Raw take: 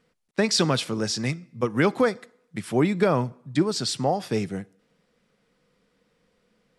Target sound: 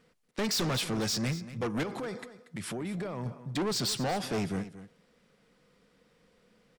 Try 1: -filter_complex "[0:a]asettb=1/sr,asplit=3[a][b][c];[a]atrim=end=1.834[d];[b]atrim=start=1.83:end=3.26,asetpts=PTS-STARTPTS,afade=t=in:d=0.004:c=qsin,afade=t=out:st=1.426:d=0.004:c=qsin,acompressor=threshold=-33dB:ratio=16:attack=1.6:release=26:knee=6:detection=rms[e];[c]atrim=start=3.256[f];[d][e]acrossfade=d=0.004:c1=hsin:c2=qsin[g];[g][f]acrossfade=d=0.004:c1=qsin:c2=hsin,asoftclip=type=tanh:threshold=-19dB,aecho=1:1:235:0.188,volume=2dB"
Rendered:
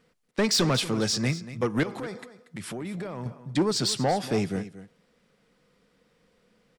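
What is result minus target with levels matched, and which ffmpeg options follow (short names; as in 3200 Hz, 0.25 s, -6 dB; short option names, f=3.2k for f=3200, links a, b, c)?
soft clip: distortion -7 dB
-filter_complex "[0:a]asettb=1/sr,asplit=3[a][b][c];[a]atrim=end=1.834[d];[b]atrim=start=1.83:end=3.26,asetpts=PTS-STARTPTS,afade=t=in:d=0.004:c=qsin,afade=t=out:st=1.426:d=0.004:c=qsin,acompressor=threshold=-33dB:ratio=16:attack=1.6:release=26:knee=6:detection=rms[e];[c]atrim=start=3.256[f];[d][e]acrossfade=d=0.004:c1=hsin:c2=qsin[g];[g][f]acrossfade=d=0.004:c1=qsin:c2=hsin,asoftclip=type=tanh:threshold=-29.5dB,aecho=1:1:235:0.188,volume=2dB"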